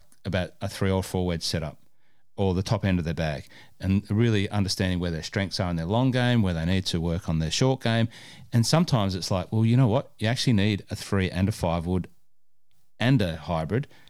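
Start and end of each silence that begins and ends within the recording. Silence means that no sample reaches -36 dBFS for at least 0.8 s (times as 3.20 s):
12.06–13.00 s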